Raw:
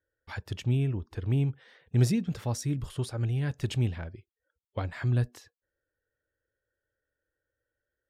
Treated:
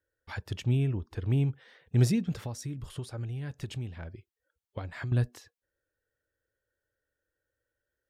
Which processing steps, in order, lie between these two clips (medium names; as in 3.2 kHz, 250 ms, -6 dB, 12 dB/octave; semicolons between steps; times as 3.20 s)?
2.41–5.12 s: compression 5:1, threshold -34 dBFS, peak gain reduction 11 dB